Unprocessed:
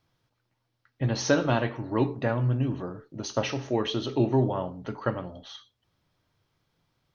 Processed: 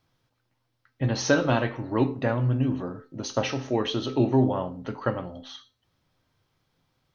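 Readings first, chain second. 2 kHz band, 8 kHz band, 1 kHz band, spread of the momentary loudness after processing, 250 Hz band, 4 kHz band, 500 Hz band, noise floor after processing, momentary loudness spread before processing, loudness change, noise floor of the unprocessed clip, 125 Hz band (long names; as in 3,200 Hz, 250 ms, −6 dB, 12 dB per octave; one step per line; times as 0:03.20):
+2.5 dB, can't be measured, +1.5 dB, 14 LU, +2.5 dB, +1.5 dB, +1.5 dB, −75 dBFS, 13 LU, +1.5 dB, −77 dBFS, +1.0 dB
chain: tuned comb filter 260 Hz, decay 0.4 s, harmonics all, mix 60%
level +8.5 dB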